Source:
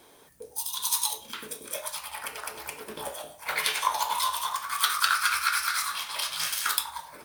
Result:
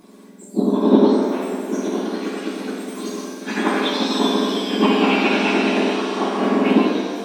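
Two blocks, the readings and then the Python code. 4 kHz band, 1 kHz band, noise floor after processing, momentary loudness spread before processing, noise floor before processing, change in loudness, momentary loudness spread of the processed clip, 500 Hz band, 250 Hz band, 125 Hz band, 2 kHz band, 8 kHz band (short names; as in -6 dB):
+3.5 dB, +5.5 dB, -43 dBFS, 13 LU, -55 dBFS, +9.0 dB, 12 LU, +24.0 dB, +37.5 dB, n/a, +4.0 dB, -8.0 dB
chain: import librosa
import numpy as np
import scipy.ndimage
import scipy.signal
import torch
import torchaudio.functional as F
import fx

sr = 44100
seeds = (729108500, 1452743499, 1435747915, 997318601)

y = fx.octave_mirror(x, sr, pivot_hz=1900.0)
y = fx.rev_shimmer(y, sr, seeds[0], rt60_s=1.6, semitones=7, shimmer_db=-8, drr_db=-1.0)
y = F.gain(torch.from_numpy(y), 3.0).numpy()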